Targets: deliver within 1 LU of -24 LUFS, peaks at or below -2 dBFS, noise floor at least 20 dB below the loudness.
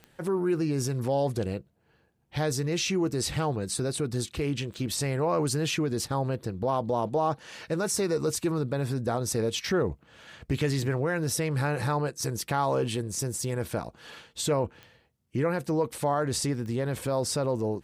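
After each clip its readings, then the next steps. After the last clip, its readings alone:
clicks 4; loudness -29.0 LUFS; peak -14.5 dBFS; loudness target -24.0 LUFS
-> de-click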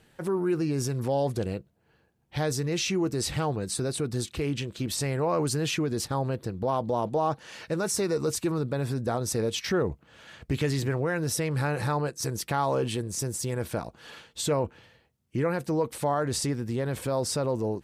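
clicks 0; loudness -29.0 LUFS; peak -14.5 dBFS; loudness target -24.0 LUFS
-> gain +5 dB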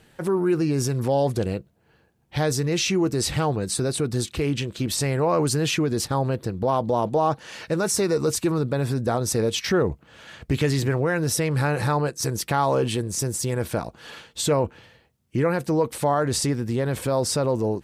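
loudness -24.0 LUFS; peak -9.5 dBFS; noise floor -61 dBFS

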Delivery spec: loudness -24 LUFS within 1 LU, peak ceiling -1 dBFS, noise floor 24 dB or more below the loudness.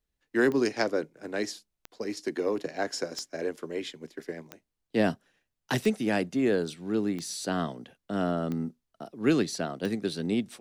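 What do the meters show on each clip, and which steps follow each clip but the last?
clicks 8; loudness -30.0 LUFS; peak -10.0 dBFS; loudness target -24.0 LUFS
-> de-click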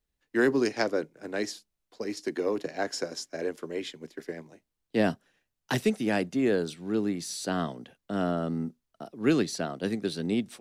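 clicks 0; loudness -30.0 LUFS; peak -10.0 dBFS; loudness target -24.0 LUFS
-> gain +6 dB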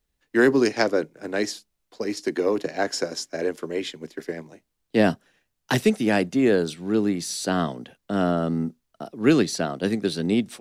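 loudness -24.0 LUFS; peak -4.0 dBFS; noise floor -77 dBFS

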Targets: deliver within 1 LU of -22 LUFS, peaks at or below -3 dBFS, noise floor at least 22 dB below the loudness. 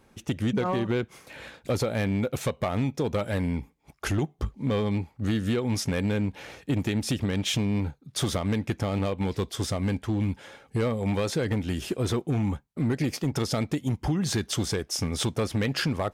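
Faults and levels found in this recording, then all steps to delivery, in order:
clipped 1.8%; flat tops at -19.5 dBFS; loudness -28.5 LUFS; peak -19.5 dBFS; loudness target -22.0 LUFS
-> clip repair -19.5 dBFS; gain +6.5 dB

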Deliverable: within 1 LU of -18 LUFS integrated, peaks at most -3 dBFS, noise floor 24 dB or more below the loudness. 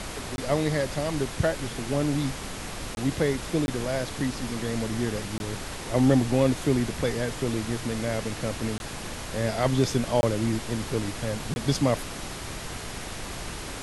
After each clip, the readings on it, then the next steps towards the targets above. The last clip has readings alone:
dropouts 7; longest dropout 21 ms; noise floor -37 dBFS; noise floor target -52 dBFS; loudness -28.0 LUFS; peak -8.5 dBFS; loudness target -18.0 LUFS
-> interpolate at 0.36/2.95/3.66/5.38/8.78/10.21/11.54, 21 ms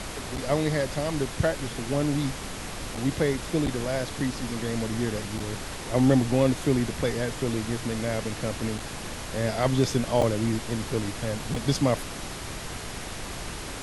dropouts 0; noise floor -37 dBFS; noise floor target -52 dBFS
-> noise print and reduce 15 dB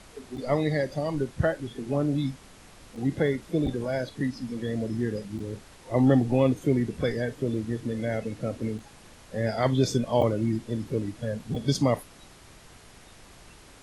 noise floor -51 dBFS; noise floor target -52 dBFS
-> noise print and reduce 6 dB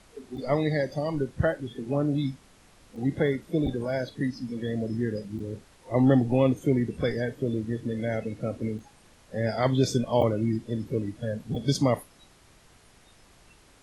noise floor -57 dBFS; loudness -28.0 LUFS; peak -9.0 dBFS; loudness target -18.0 LUFS
-> gain +10 dB; limiter -3 dBFS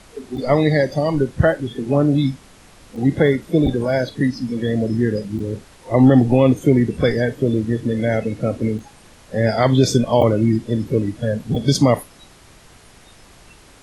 loudness -18.5 LUFS; peak -3.0 dBFS; noise floor -47 dBFS

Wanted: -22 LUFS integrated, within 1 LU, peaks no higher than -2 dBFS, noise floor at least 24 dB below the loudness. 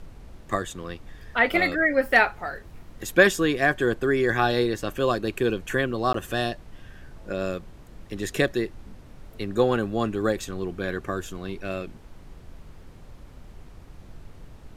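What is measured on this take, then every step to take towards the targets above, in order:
dropouts 1; longest dropout 13 ms; noise floor -47 dBFS; noise floor target -49 dBFS; loudness -25.0 LUFS; peak -3.5 dBFS; loudness target -22.0 LUFS
-> interpolate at 6.13, 13 ms; noise print and reduce 6 dB; gain +3 dB; limiter -2 dBFS

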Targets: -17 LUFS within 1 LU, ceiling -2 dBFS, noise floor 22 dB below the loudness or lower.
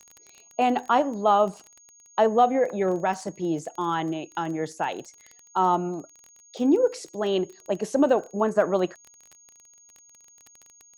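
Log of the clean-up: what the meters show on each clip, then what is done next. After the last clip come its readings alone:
ticks 19/s; steady tone 6600 Hz; tone level -52 dBFS; loudness -25.0 LUFS; peak -8.0 dBFS; loudness target -17.0 LUFS
-> de-click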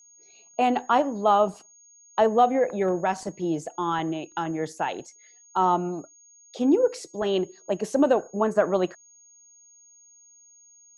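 ticks 0/s; steady tone 6600 Hz; tone level -52 dBFS
-> notch 6600 Hz, Q 30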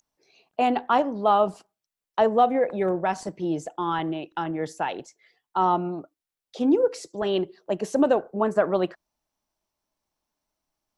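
steady tone none; loudness -25.0 LUFS; peak -8.0 dBFS; loudness target -17.0 LUFS
-> gain +8 dB; limiter -2 dBFS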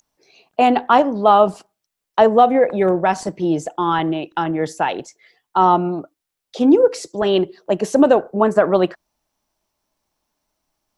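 loudness -17.0 LUFS; peak -2.0 dBFS; noise floor -82 dBFS

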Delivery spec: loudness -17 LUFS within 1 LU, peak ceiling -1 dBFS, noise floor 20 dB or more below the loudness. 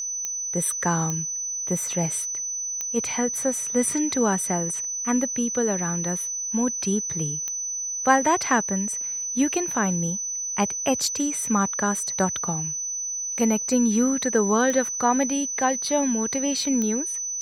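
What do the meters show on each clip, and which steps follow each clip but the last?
clicks 6; steady tone 6000 Hz; tone level -27 dBFS; loudness -23.5 LUFS; peak -4.0 dBFS; loudness target -17.0 LUFS
-> de-click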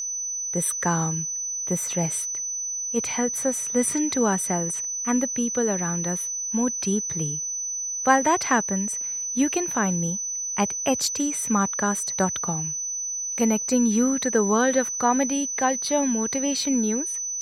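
clicks 0; steady tone 6000 Hz; tone level -27 dBFS
-> notch 6000 Hz, Q 30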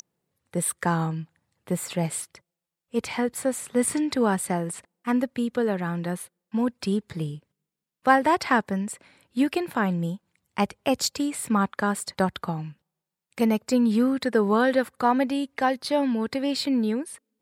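steady tone none; loudness -25.5 LUFS; peak -4.5 dBFS; loudness target -17.0 LUFS
-> gain +8.5 dB; limiter -1 dBFS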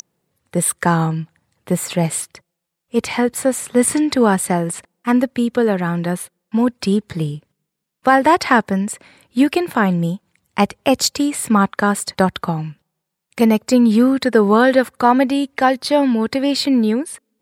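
loudness -17.5 LUFS; peak -1.0 dBFS; noise floor -78 dBFS

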